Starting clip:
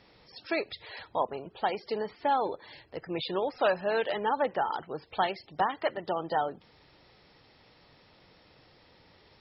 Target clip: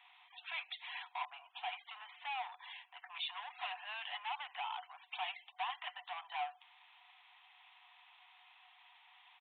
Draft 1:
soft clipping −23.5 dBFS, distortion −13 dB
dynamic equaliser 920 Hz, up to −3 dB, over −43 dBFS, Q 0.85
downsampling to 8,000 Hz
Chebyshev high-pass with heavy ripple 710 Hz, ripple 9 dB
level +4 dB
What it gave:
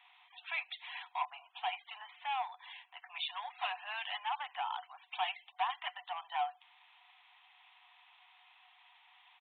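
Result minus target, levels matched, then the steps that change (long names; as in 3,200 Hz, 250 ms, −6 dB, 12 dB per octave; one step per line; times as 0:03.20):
soft clipping: distortion −7 dB
change: soft clipping −32.5 dBFS, distortion −6 dB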